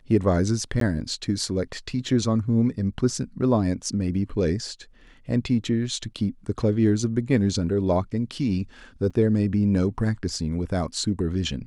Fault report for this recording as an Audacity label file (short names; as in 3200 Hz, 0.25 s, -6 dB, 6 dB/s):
0.800000	0.810000	gap 13 ms
9.100000	9.110000	gap 5.9 ms